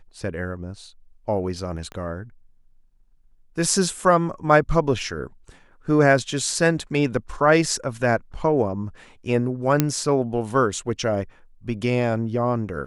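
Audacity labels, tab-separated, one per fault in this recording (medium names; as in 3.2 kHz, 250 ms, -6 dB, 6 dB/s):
1.920000	1.920000	pop -22 dBFS
9.800000	9.800000	pop -3 dBFS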